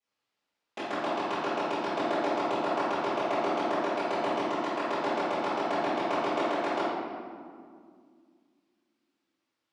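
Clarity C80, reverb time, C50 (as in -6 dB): 0.0 dB, 2.1 s, -3.5 dB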